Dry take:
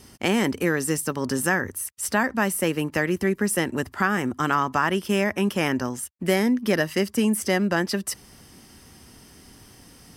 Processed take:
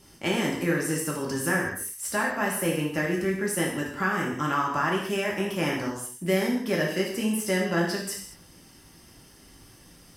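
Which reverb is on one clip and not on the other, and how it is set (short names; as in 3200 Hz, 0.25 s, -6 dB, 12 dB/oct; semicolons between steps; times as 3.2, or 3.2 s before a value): non-linear reverb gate 0.25 s falling, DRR -3 dB; gain -7.5 dB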